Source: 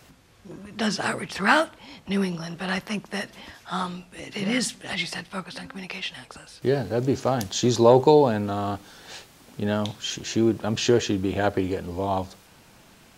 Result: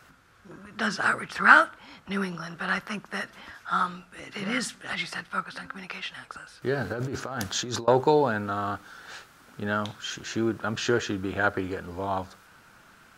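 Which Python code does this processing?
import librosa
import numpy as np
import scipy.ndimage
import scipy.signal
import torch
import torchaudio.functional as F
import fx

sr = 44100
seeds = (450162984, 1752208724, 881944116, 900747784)

y = fx.peak_eq(x, sr, hz=1400.0, db=14.5, octaves=0.69)
y = fx.over_compress(y, sr, threshold_db=-26.0, ratio=-1.0, at=(6.78, 7.88))
y = y * librosa.db_to_amplitude(-6.0)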